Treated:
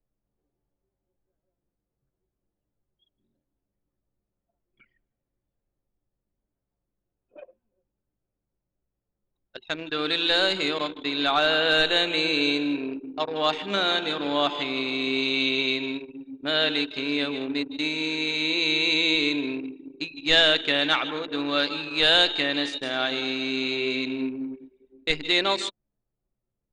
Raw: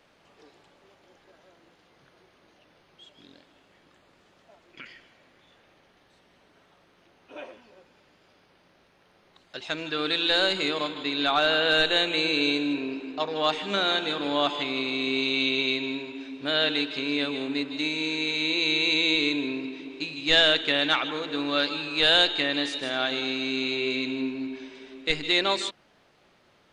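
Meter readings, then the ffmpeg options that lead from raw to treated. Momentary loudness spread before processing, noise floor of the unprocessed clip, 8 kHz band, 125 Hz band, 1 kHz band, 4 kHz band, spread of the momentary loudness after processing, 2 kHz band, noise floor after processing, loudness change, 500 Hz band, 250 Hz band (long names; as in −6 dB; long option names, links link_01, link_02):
13 LU, −62 dBFS, +0.5 dB, +0.5 dB, +1.0 dB, +1.0 dB, 12 LU, +1.0 dB, −84 dBFS, +1.0 dB, +1.0 dB, +1.0 dB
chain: -af "anlmdn=10,volume=1dB"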